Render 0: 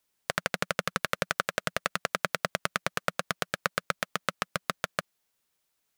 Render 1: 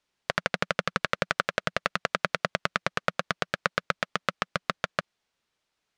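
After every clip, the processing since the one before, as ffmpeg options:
ffmpeg -i in.wav -af "lowpass=4900,volume=2.5dB" out.wav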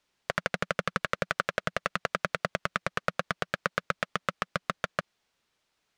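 ffmpeg -i in.wav -filter_complex "[0:a]asplit=2[link_01][link_02];[link_02]alimiter=limit=-13.5dB:level=0:latency=1:release=80,volume=-0.5dB[link_03];[link_01][link_03]amix=inputs=2:normalize=0,asoftclip=type=tanh:threshold=-6.5dB,volume=-2.5dB" out.wav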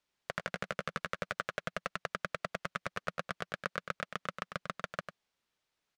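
ffmpeg -i in.wav -af "aecho=1:1:98:0.355,volume=-8dB" out.wav

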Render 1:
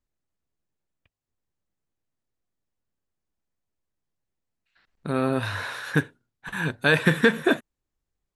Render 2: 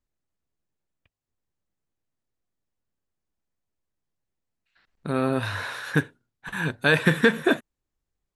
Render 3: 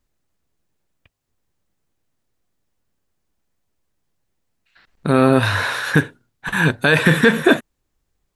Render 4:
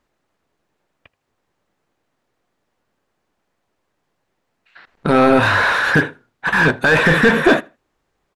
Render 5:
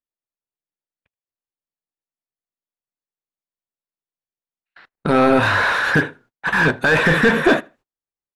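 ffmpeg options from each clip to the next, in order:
ffmpeg -i in.wav -af anull out.wav
ffmpeg -i in.wav -af "alimiter=level_in=12dB:limit=-1dB:release=50:level=0:latency=1,volume=-1dB" out.wav
ffmpeg -i in.wav -filter_complex "[0:a]asplit=2[link_01][link_02];[link_02]highpass=frequency=720:poles=1,volume=21dB,asoftclip=type=tanh:threshold=-1.5dB[link_03];[link_01][link_03]amix=inputs=2:normalize=0,lowpass=frequency=1100:poles=1,volume=-6dB,asplit=2[link_04][link_05];[link_05]adelay=79,lowpass=frequency=3700:poles=1,volume=-24dB,asplit=2[link_06][link_07];[link_07]adelay=79,lowpass=frequency=3700:poles=1,volume=0.21[link_08];[link_04][link_06][link_08]amix=inputs=3:normalize=0" out.wav
ffmpeg -i in.wav -af "agate=range=-30dB:threshold=-45dB:ratio=16:detection=peak,volume=-2dB" out.wav

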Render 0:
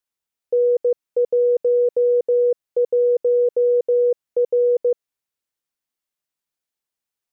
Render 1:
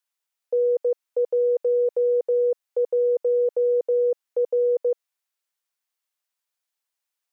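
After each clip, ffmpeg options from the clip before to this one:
ffmpeg -i in.wav -af "highpass=630,volume=2dB" out.wav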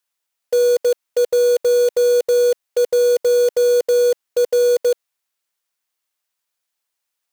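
ffmpeg -i in.wav -af "acrusher=bits=3:mode=log:mix=0:aa=0.000001,volume=5.5dB" out.wav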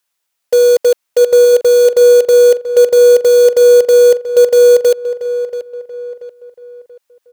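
ffmpeg -i in.wav -filter_complex "[0:a]asplit=2[link_01][link_02];[link_02]adelay=683,lowpass=frequency=2700:poles=1,volume=-12dB,asplit=2[link_03][link_04];[link_04]adelay=683,lowpass=frequency=2700:poles=1,volume=0.4,asplit=2[link_05][link_06];[link_06]adelay=683,lowpass=frequency=2700:poles=1,volume=0.4,asplit=2[link_07][link_08];[link_08]adelay=683,lowpass=frequency=2700:poles=1,volume=0.4[link_09];[link_01][link_03][link_05][link_07][link_09]amix=inputs=5:normalize=0,volume=6.5dB" out.wav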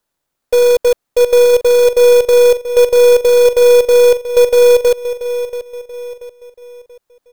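ffmpeg -i in.wav -filter_complex "[0:a]aeval=exprs='if(lt(val(0),0),0.708*val(0),val(0))':channel_layout=same,asplit=2[link_01][link_02];[link_02]acrusher=samples=15:mix=1:aa=0.000001,volume=-4dB[link_03];[link_01][link_03]amix=inputs=2:normalize=0,volume=-4dB" out.wav

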